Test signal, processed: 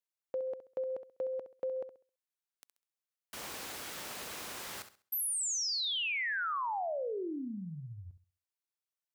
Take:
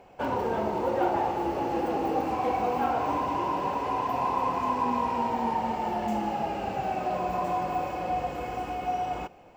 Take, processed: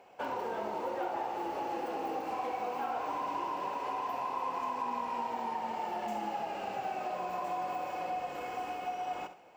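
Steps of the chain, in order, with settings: high-pass 560 Hz 6 dB/octave; compression 2.5:1, threshold -32 dBFS; flutter echo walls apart 11.4 m, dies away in 0.36 s; trim -2 dB

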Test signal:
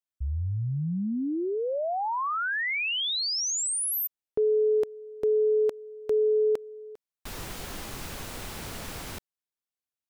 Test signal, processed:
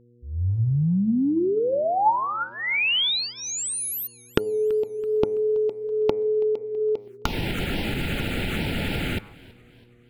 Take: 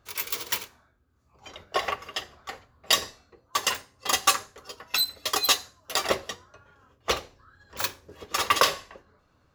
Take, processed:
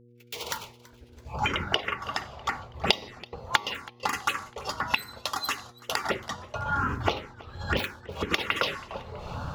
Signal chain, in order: fade-in on the opening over 2.19 s; recorder AGC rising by 54 dB/s, up to +34 dB; peaking EQ 210 Hz +6.5 dB 2.6 oct; de-hum 103.6 Hz, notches 23; gate -36 dBFS, range -26 dB; low-pass 3.7 kHz 6 dB/octave; touch-sensitive phaser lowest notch 170 Hz, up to 1.6 kHz, full sweep at -14.5 dBFS; peaking EQ 2.6 kHz +6.5 dB 1.2 oct; compression 3:1, threshold -17 dBFS; small resonant body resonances 870/1400 Hz, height 9 dB; mains buzz 120 Hz, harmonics 4, -51 dBFS -3 dB/octave; modulated delay 329 ms, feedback 47%, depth 111 cents, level -22 dB; trim -5 dB

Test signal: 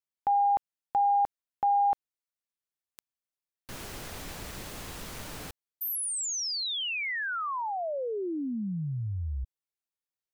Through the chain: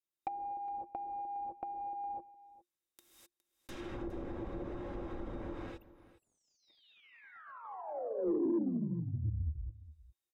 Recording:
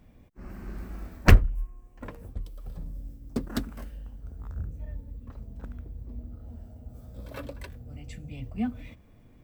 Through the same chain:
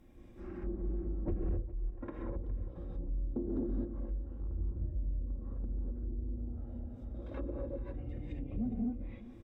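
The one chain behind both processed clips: treble shelf 9.2 kHz +4.5 dB; band-stop 4.4 kHz, Q 10; comb 3.7 ms, depth 37%; gated-style reverb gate 280 ms rising, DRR -4 dB; compression 10:1, threshold -22 dBFS; small resonant body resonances 350/3700 Hz, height 16 dB, ringing for 95 ms; saturation -21 dBFS; low-pass that closes with the level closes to 510 Hz, closed at -27.5 dBFS; on a send: delay 412 ms -17.5 dB; on the sum: trim -6 dB

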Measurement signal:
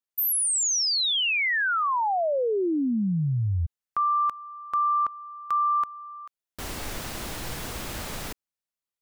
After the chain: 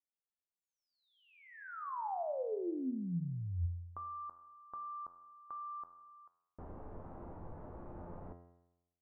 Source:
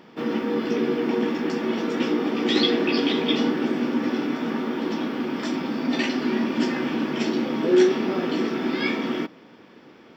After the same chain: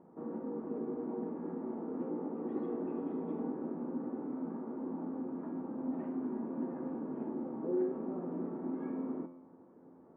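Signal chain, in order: low-pass 1 kHz 24 dB/octave; in parallel at 0 dB: compression, threshold -38 dBFS; on the sum: feedback comb 87 Hz, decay 0.9 s, harmonics all, mix 80%; trim -4.5 dB

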